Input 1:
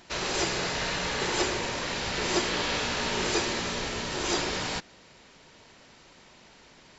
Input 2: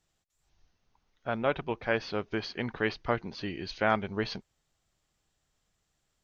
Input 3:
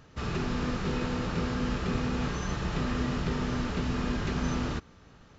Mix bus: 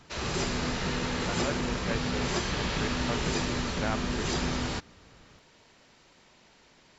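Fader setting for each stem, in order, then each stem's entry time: -5.0 dB, -7.5 dB, -2.0 dB; 0.00 s, 0.00 s, 0.00 s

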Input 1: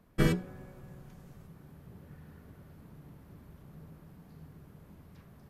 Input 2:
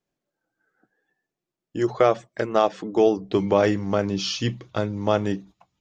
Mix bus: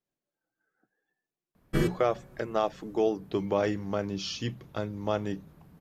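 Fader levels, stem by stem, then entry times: -1.5 dB, -8.0 dB; 1.55 s, 0.00 s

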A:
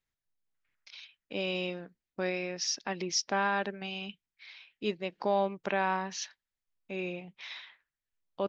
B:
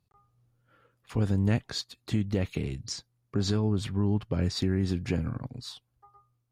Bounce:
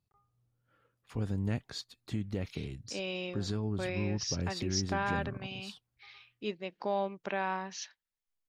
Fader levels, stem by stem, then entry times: -4.0 dB, -7.5 dB; 1.60 s, 0.00 s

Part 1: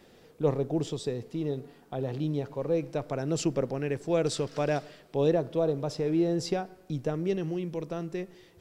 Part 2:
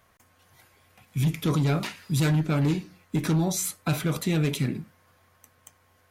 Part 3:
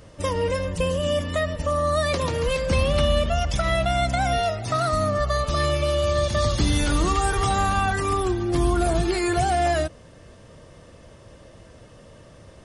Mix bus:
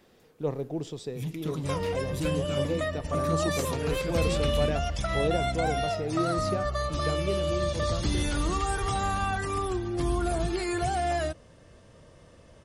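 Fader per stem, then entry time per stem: -4.0 dB, -10.0 dB, -6.5 dB; 0.00 s, 0.00 s, 1.45 s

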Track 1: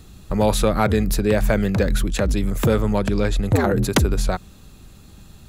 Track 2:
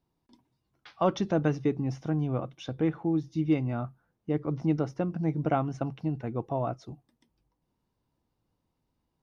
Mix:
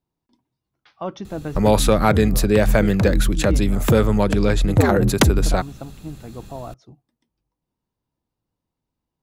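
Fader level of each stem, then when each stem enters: +2.5 dB, -3.5 dB; 1.25 s, 0.00 s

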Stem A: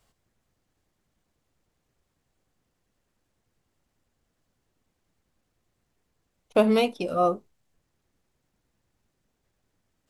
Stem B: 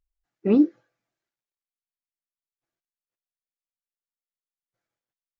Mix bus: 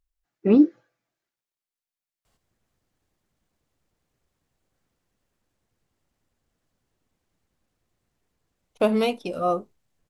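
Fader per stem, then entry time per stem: -1.0 dB, +2.0 dB; 2.25 s, 0.00 s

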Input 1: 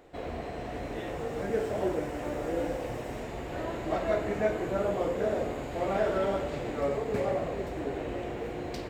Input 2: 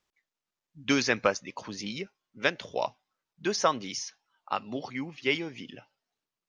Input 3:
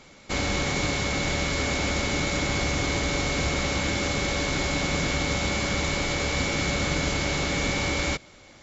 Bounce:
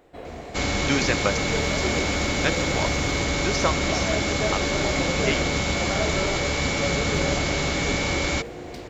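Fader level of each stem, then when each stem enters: -0.5 dB, +0.5 dB, +1.5 dB; 0.00 s, 0.00 s, 0.25 s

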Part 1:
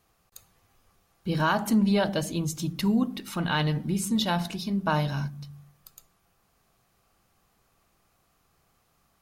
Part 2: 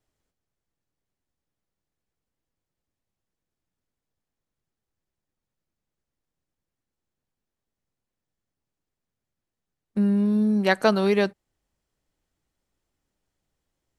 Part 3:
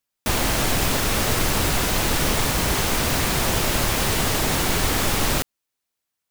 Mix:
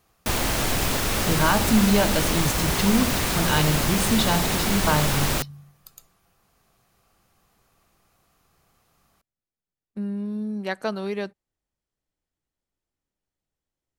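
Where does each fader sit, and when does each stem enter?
+3.0 dB, -8.0 dB, -2.5 dB; 0.00 s, 0.00 s, 0.00 s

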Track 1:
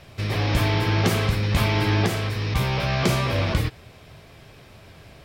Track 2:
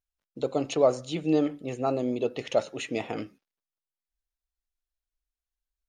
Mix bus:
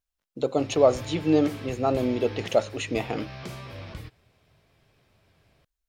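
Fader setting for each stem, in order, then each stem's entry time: -17.0 dB, +3.0 dB; 0.40 s, 0.00 s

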